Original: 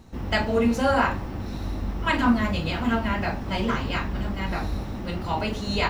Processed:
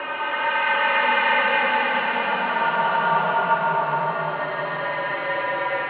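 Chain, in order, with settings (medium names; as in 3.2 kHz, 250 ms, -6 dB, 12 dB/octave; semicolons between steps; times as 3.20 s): Paulstretch 13×, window 0.25 s, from 2.01 s; mistuned SSB -80 Hz 470–3300 Hz; trim +4.5 dB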